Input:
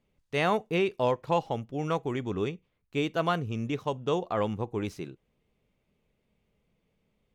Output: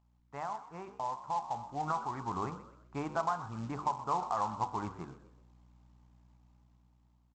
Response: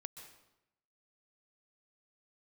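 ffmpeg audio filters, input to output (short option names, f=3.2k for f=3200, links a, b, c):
-filter_complex "[0:a]lowpass=f=1.2k:w=0.5412,lowpass=f=1.2k:w=1.3066,aemphasis=mode=production:type=cd,aeval=exprs='val(0)+0.00158*(sin(2*PI*60*n/s)+sin(2*PI*2*60*n/s)/2+sin(2*PI*3*60*n/s)/3+sin(2*PI*4*60*n/s)/4+sin(2*PI*5*60*n/s)/5)':c=same,lowshelf=f=640:t=q:w=3:g=-11,acompressor=threshold=-40dB:ratio=1.5,alimiter=level_in=4dB:limit=-24dB:level=0:latency=1:release=471,volume=-4dB,bandreject=f=49.26:t=h:w=4,bandreject=f=98.52:t=h:w=4,bandreject=f=147.78:t=h:w=4,bandreject=f=197.04:t=h:w=4,bandreject=f=246.3:t=h:w=4,bandreject=f=295.56:t=h:w=4,bandreject=f=344.82:t=h:w=4,bandreject=f=394.08:t=h:w=4,bandreject=f=443.34:t=h:w=4,bandreject=f=492.6:t=h:w=4,bandreject=f=541.86:t=h:w=4,bandreject=f=591.12:t=h:w=4,bandreject=f=640.38:t=h:w=4,bandreject=f=689.64:t=h:w=4,bandreject=f=738.9:t=h:w=4,bandreject=f=788.16:t=h:w=4,bandreject=f=837.42:t=h:w=4,bandreject=f=886.68:t=h:w=4,bandreject=f=935.94:t=h:w=4,bandreject=f=985.2:t=h:w=4,bandreject=f=1.03446k:t=h:w=4,bandreject=f=1.08372k:t=h:w=4,bandreject=f=1.13298k:t=h:w=4,bandreject=f=1.18224k:t=h:w=4,bandreject=f=1.2315k:t=h:w=4,bandreject=f=1.28076k:t=h:w=4,bandreject=f=1.33002k:t=h:w=4,bandreject=f=1.37928k:t=h:w=4,bandreject=f=1.42854k:t=h:w=4,bandreject=f=1.4778k:t=h:w=4,bandreject=f=1.52706k:t=h:w=4,bandreject=f=1.57632k:t=h:w=4,bandreject=f=1.62558k:t=h:w=4,aresample=16000,acrusher=bits=5:mode=log:mix=0:aa=0.000001,aresample=44100,dynaudnorm=f=630:g=5:m=9dB,asplit=4[a][b][c][d];[b]adelay=126,afreqshift=70,volume=-15dB[e];[c]adelay=252,afreqshift=140,volume=-23.6dB[f];[d]adelay=378,afreqshift=210,volume=-32.3dB[g];[a][e][f][g]amix=inputs=4:normalize=0,volume=-1dB"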